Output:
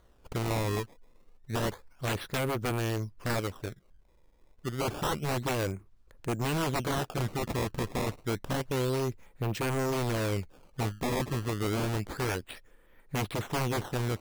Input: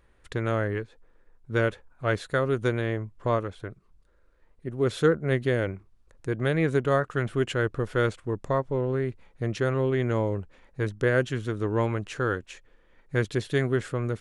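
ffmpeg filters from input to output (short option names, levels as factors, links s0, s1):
-af "acrusher=samples=17:mix=1:aa=0.000001:lfo=1:lforange=27.2:lforate=0.29,aeval=exprs='0.0631*(abs(mod(val(0)/0.0631+3,4)-2)-1)':c=same"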